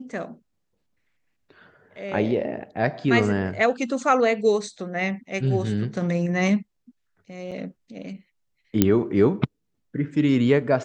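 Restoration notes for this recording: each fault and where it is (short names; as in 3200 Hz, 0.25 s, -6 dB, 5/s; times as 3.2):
7.51–7.52 gap 6.4 ms
8.82 pop -3 dBFS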